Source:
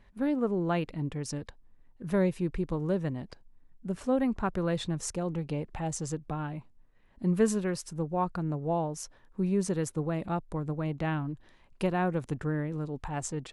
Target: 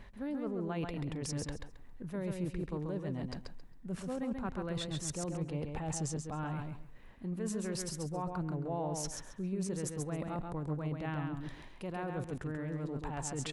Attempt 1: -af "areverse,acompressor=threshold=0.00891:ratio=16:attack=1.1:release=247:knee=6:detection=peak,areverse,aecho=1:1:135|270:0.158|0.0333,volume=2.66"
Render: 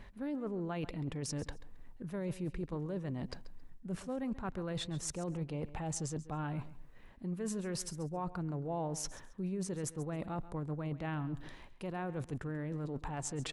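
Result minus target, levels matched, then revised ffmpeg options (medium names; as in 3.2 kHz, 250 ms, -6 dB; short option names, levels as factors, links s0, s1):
echo-to-direct -11.5 dB
-af "areverse,acompressor=threshold=0.00891:ratio=16:attack=1.1:release=247:knee=6:detection=peak,areverse,aecho=1:1:135|270|405:0.596|0.125|0.0263,volume=2.66"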